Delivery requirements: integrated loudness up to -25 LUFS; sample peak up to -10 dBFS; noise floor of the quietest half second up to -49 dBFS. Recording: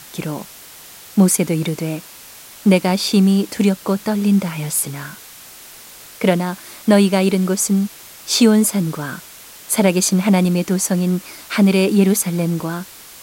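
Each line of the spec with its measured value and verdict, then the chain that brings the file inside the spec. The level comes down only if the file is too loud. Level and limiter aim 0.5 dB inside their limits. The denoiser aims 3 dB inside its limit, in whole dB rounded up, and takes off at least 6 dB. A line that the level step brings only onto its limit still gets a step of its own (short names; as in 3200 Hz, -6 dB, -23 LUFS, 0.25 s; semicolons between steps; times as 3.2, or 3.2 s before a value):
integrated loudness -17.0 LUFS: fail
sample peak -1.5 dBFS: fail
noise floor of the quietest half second -40 dBFS: fail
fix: denoiser 6 dB, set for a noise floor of -40 dBFS; gain -8.5 dB; limiter -10.5 dBFS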